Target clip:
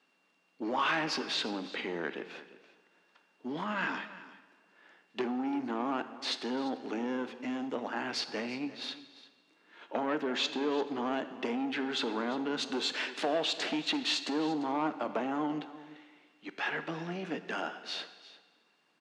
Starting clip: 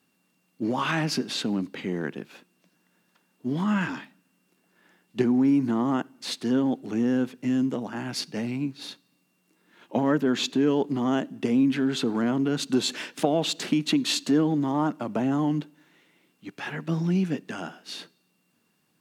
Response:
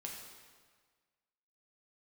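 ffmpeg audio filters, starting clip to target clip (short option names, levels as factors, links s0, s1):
-filter_complex "[0:a]acompressor=threshold=0.0398:ratio=1.5,asoftclip=type=tanh:threshold=0.0708,highpass=430,lowpass=4300,aecho=1:1:345:0.141,asplit=2[s0][s1];[1:a]atrim=start_sample=2205[s2];[s1][s2]afir=irnorm=-1:irlink=0,volume=0.596[s3];[s0][s3]amix=inputs=2:normalize=0"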